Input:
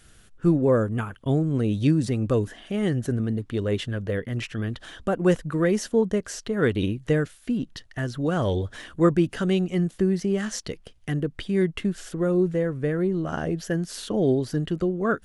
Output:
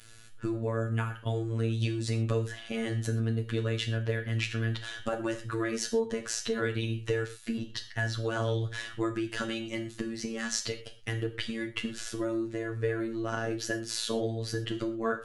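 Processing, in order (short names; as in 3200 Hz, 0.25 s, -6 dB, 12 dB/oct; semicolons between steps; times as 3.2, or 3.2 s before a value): bell 3300 Hz +8.5 dB 2.9 oct; compressor, threshold -23 dBFS, peak gain reduction 10.5 dB; robotiser 113 Hz; non-linear reverb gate 0.15 s falling, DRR 5 dB; gain -2.5 dB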